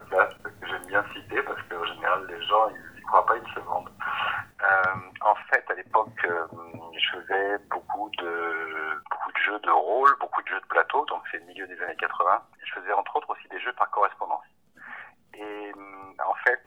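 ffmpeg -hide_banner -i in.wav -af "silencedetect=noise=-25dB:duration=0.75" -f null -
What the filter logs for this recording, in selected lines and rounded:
silence_start: 14.37
silence_end: 16.19 | silence_duration: 1.83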